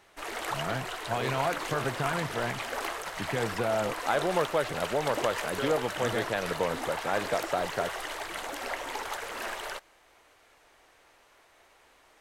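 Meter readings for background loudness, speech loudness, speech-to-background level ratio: -35.0 LUFS, -31.5 LUFS, 3.5 dB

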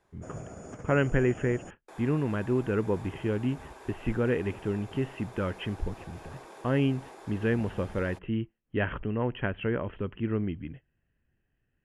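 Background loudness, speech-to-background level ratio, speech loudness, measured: -47.5 LUFS, 17.0 dB, -30.5 LUFS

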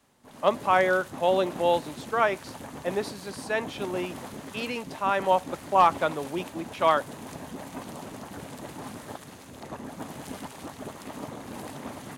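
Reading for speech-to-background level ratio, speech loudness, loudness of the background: 14.0 dB, -26.5 LUFS, -40.5 LUFS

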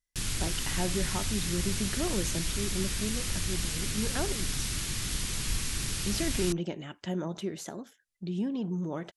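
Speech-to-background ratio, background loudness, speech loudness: -3.5 dB, -32.0 LUFS, -35.5 LUFS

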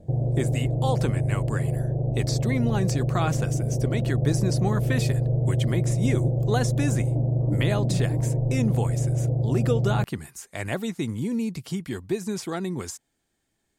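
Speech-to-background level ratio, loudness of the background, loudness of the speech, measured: -5.0 dB, -25.0 LUFS, -30.0 LUFS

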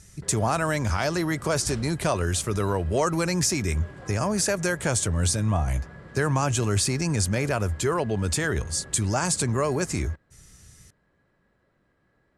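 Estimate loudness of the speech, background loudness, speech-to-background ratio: -25.5 LUFS, -44.0 LUFS, 18.5 dB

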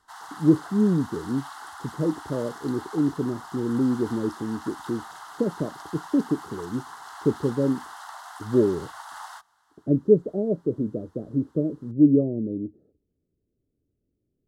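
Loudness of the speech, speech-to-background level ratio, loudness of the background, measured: -25.5 LUFS, 15.5 dB, -41.0 LUFS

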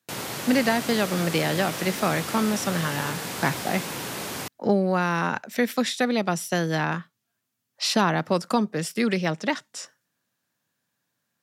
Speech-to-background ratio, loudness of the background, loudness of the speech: 6.0 dB, -31.5 LUFS, -25.5 LUFS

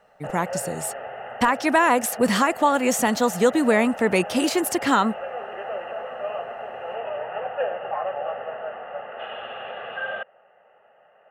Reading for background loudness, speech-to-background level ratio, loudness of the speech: -33.0 LUFS, 11.5 dB, -21.5 LUFS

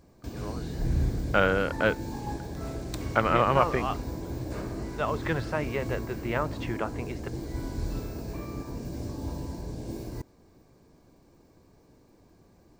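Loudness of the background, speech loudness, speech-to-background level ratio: -35.5 LUFS, -28.5 LUFS, 7.0 dB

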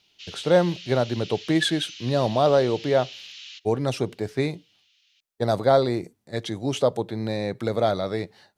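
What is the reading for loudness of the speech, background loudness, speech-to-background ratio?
-24.5 LUFS, -39.5 LUFS, 15.0 dB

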